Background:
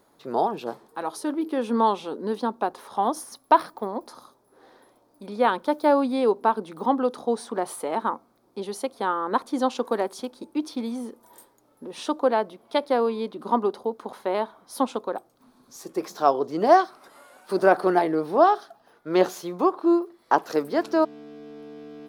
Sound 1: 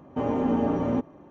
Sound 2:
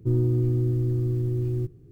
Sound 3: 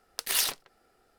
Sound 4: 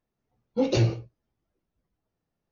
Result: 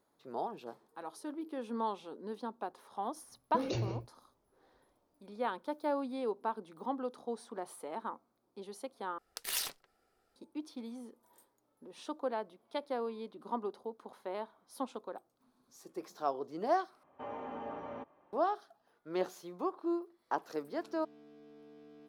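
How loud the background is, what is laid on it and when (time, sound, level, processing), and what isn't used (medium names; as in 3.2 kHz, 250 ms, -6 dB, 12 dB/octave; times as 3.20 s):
background -14.5 dB
2.98 s: add 4 -1 dB + compression, threshold -31 dBFS
9.18 s: replace with 3 -9 dB
17.03 s: replace with 1 -9.5 dB + three-band isolator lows -17 dB, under 560 Hz, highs -17 dB, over 4.3 kHz
not used: 2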